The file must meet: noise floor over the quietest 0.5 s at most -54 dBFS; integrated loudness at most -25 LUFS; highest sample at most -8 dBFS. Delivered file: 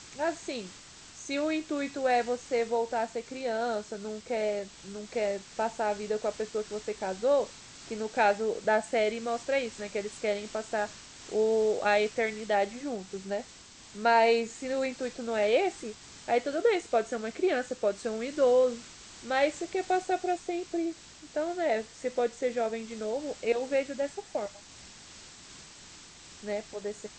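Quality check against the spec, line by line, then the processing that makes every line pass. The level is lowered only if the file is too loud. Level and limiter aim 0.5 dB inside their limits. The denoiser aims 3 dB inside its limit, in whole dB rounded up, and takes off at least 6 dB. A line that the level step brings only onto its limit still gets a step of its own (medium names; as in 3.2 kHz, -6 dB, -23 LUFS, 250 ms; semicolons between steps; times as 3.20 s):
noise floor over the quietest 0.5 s -51 dBFS: fail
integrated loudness -30.5 LUFS: pass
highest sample -12.5 dBFS: pass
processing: noise reduction 6 dB, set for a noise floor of -51 dBFS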